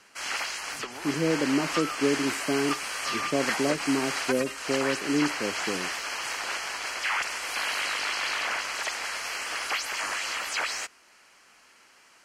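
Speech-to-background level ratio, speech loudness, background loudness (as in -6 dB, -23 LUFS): 0.0 dB, -29.5 LUFS, -29.5 LUFS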